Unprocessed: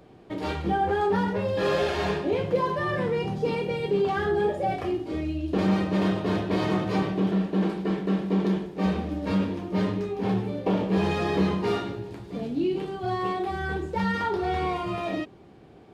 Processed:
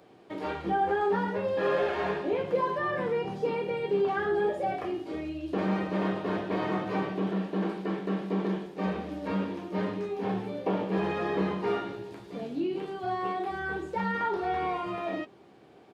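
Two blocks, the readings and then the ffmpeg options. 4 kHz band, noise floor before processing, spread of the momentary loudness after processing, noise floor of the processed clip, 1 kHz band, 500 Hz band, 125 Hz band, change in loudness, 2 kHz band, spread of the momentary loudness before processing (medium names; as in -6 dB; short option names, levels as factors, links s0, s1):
-7.0 dB, -50 dBFS, 7 LU, -55 dBFS, -2.0 dB, -2.5 dB, -8.0 dB, -4.0 dB, -2.0 dB, 6 LU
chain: -filter_complex "[0:a]highpass=f=360:p=1,acrossover=split=2500[s0][s1];[s1]acompressor=threshold=0.002:ratio=4:attack=1:release=60[s2];[s0][s2]amix=inputs=2:normalize=0,asplit=2[s3][s4];[s4]adelay=15,volume=0.211[s5];[s3][s5]amix=inputs=2:normalize=0,volume=0.891"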